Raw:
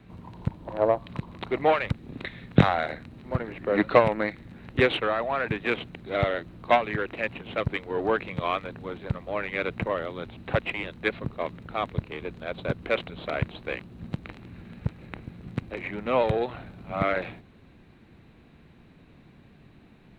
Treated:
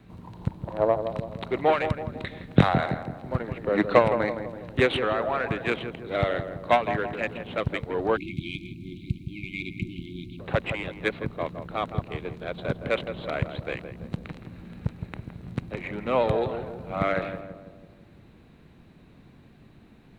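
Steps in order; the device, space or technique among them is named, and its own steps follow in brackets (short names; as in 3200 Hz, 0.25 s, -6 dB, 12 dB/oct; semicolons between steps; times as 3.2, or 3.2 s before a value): darkening echo 0.165 s, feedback 56%, low-pass 1100 Hz, level -7.5 dB; spectral delete 8.17–10.4, 380–2100 Hz; exciter from parts (in parallel at -5 dB: HPF 2500 Hz 12 dB/oct + soft clip -24 dBFS, distortion -15 dB + HPF 3000 Hz 6 dB/oct)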